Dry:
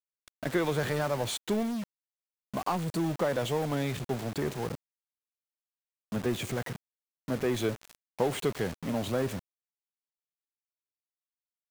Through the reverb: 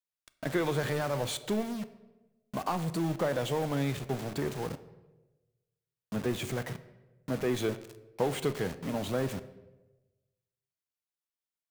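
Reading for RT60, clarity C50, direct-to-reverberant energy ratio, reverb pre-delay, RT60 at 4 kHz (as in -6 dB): 1.1 s, 15.0 dB, 11.5 dB, 6 ms, 0.75 s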